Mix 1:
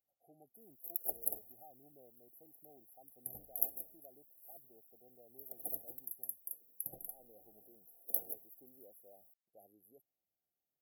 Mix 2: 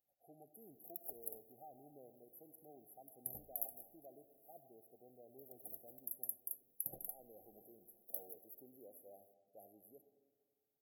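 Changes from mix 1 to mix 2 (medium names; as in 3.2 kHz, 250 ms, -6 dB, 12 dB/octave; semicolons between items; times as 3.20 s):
first sound -11.5 dB; reverb: on, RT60 1.5 s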